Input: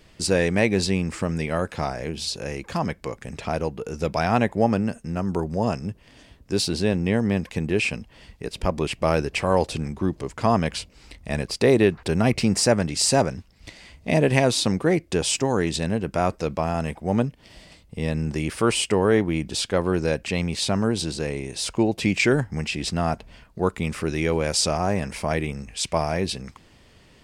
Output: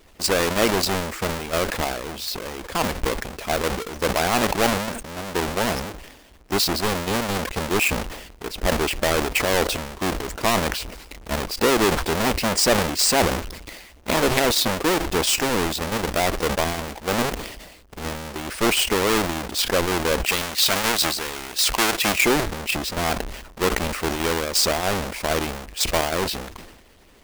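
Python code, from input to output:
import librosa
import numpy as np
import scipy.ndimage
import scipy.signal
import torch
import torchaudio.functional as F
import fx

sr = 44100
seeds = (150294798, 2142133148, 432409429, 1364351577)

p1 = fx.halfwave_hold(x, sr)
p2 = fx.hpss(p1, sr, part='percussive', gain_db=7)
p3 = fx.tilt_shelf(p2, sr, db=-5.5, hz=770.0, at=(20.26, 22.18))
p4 = fx.level_steps(p3, sr, step_db=16)
p5 = p3 + F.gain(torch.from_numpy(p4), 2.5).numpy()
p6 = fx.peak_eq(p5, sr, hz=130.0, db=-12.5, octaves=1.3)
p7 = fx.sustainer(p6, sr, db_per_s=57.0)
y = F.gain(torch.from_numpy(p7), -11.5).numpy()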